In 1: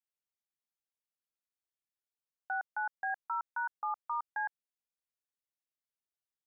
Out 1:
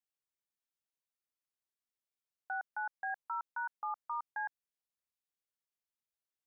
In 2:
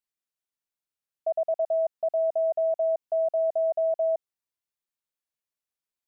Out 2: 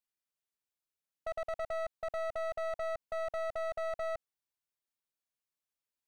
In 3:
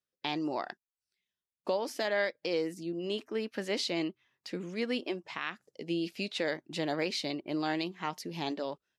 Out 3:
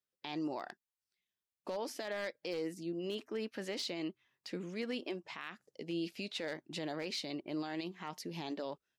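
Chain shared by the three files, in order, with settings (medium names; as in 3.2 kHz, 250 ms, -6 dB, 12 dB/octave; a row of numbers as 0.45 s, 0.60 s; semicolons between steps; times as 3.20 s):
one-sided wavefolder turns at -26 dBFS; peak limiter -26.5 dBFS; trim -3 dB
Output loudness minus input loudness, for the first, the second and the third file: -3.0 LU, -11.0 LU, -6.0 LU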